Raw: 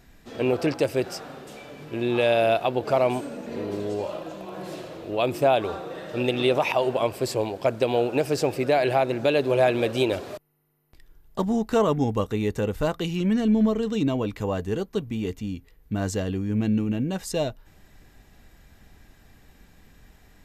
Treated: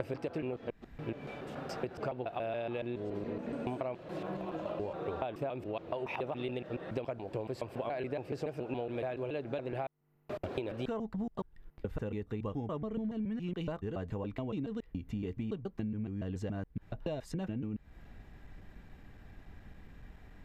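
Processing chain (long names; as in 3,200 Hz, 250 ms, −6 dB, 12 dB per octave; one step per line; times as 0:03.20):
slices reordered back to front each 141 ms, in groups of 7
bass and treble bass +3 dB, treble −15 dB
downward compressor 12 to 1, threshold −32 dBFS, peak gain reduction 17.5 dB
level −1.5 dB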